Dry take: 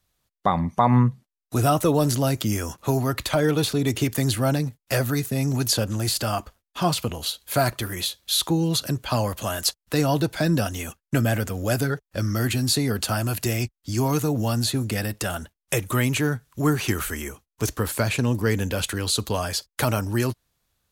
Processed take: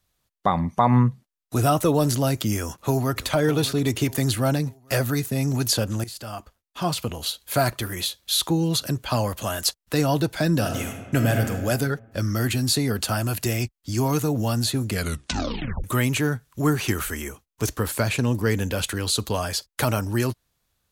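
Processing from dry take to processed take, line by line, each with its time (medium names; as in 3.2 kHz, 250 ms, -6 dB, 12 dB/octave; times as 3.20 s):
2.56–3.28 s: echo throw 600 ms, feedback 40%, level -15 dB
6.04–7.27 s: fade in, from -15.5 dB
10.54–11.50 s: reverb throw, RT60 1.4 s, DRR 4 dB
14.89 s: tape stop 0.95 s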